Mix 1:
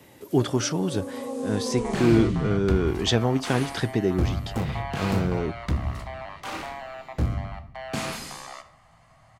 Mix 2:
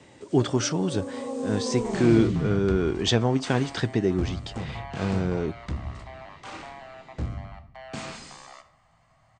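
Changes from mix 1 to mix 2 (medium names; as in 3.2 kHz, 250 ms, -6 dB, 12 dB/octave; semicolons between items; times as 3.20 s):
second sound -6.0 dB; master: add brick-wall FIR low-pass 9.1 kHz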